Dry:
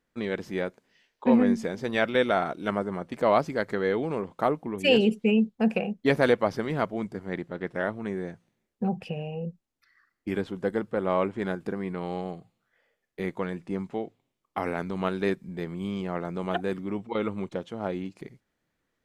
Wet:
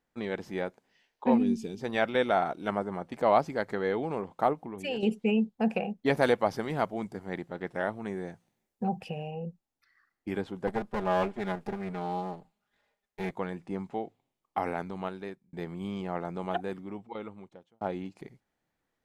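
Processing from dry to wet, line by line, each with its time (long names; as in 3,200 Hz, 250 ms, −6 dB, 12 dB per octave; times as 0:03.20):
0:01.38–0:01.81: gain on a spectral selection 470–2,300 Hz −17 dB
0:04.53–0:05.03: downward compressor 2 to 1, threshold −34 dBFS
0:06.17–0:09.31: high-shelf EQ 5,500 Hz +7.5 dB
0:10.67–0:13.31: lower of the sound and its delayed copy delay 4.9 ms
0:14.71–0:15.53: fade out
0:16.30–0:17.81: fade out
whole clip: parametric band 800 Hz +7 dB 0.47 octaves; level −4 dB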